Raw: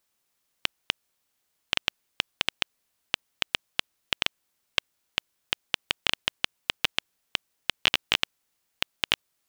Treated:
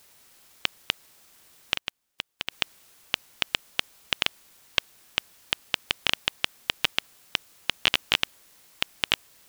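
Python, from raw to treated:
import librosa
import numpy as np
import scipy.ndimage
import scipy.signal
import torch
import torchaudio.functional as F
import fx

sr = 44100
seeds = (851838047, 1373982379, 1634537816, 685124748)

p1 = fx.quant_dither(x, sr, seeds[0], bits=8, dither='triangular')
p2 = x + (p1 * 10.0 ** (-6.0 / 20.0))
p3 = fx.upward_expand(p2, sr, threshold_db=-31.0, expansion=2.5, at=(1.75, 2.5), fade=0.02)
y = p3 * 10.0 ** (-2.5 / 20.0)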